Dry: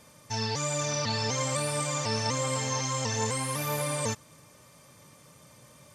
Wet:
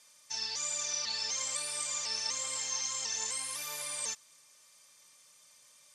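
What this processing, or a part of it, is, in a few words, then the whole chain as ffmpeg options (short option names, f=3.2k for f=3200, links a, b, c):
piezo pickup straight into a mixer: -af "lowpass=6.9k,aderivative,volume=3.5dB"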